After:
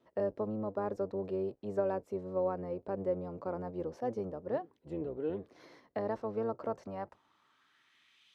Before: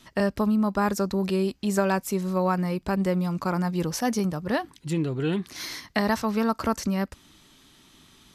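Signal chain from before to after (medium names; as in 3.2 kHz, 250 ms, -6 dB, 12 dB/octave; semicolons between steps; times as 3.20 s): octave divider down 1 oct, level 0 dB; band-pass sweep 510 Hz -> 2.8 kHz, 6.60–8.32 s; trim -3.5 dB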